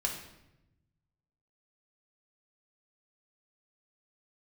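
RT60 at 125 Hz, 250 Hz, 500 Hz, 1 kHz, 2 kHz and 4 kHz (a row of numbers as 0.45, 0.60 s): 1.8, 1.4, 1.0, 0.80, 0.80, 0.70 s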